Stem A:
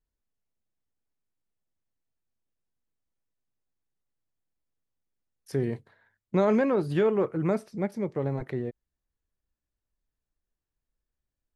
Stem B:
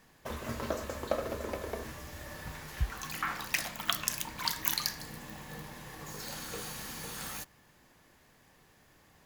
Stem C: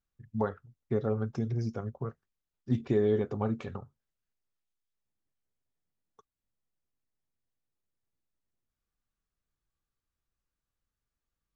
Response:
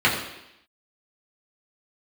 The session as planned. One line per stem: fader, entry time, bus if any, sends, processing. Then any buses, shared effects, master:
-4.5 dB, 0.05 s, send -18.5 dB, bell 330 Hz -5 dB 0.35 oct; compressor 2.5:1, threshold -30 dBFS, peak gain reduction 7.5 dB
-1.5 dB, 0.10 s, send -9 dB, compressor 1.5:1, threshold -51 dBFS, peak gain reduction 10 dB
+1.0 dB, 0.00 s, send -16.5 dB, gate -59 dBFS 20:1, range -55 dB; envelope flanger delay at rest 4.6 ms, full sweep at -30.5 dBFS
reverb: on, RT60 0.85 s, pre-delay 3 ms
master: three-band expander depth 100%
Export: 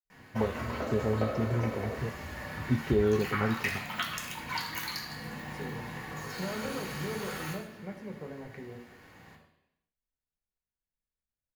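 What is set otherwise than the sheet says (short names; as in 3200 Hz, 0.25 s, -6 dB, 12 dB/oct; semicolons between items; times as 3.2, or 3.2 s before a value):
stem A -4.5 dB -> -11.5 dB; stem C: send off; master: missing three-band expander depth 100%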